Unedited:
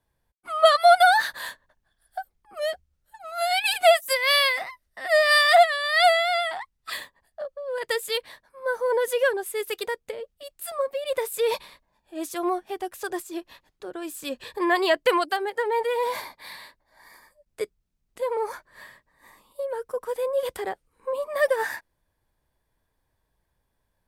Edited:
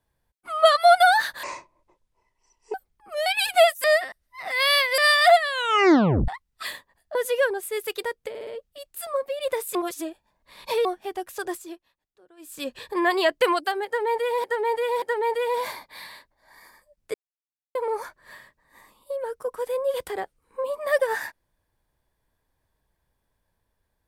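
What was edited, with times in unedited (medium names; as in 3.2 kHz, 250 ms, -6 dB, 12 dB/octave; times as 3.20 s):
1.43–2.19 s: speed 58%
2.71–3.53 s: delete
4.11–5.25 s: reverse
5.75 s: tape stop 0.80 s
7.42–8.98 s: delete
10.12 s: stutter 0.06 s, 4 plays
11.40–12.50 s: reverse
13.24–14.25 s: dip -20 dB, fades 0.23 s
15.51–16.09 s: loop, 3 plays
17.63–18.24 s: mute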